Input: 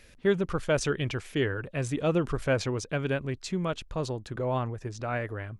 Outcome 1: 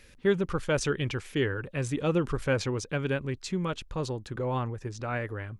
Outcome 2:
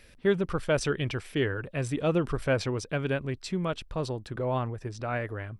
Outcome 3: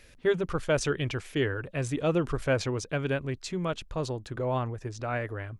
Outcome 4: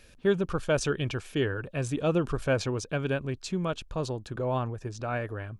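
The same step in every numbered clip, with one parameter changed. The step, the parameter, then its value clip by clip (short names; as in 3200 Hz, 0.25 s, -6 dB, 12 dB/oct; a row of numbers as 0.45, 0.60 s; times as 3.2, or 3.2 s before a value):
notch, frequency: 660, 6700, 200, 2000 Hz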